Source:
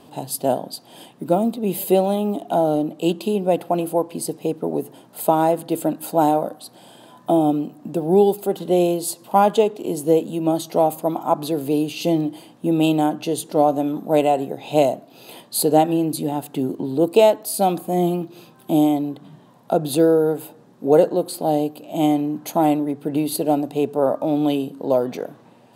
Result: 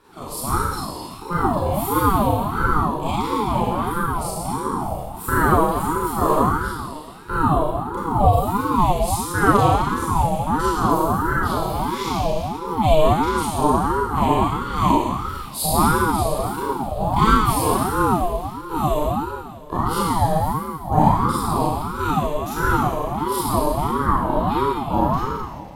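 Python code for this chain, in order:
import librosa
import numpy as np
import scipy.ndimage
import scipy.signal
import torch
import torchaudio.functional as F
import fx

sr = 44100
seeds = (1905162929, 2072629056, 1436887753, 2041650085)

y = fx.rev_schroeder(x, sr, rt60_s=1.8, comb_ms=28, drr_db=-9.5)
y = fx.ring_lfo(y, sr, carrier_hz=500.0, swing_pct=40, hz=1.5)
y = y * 10.0 ** (-6.5 / 20.0)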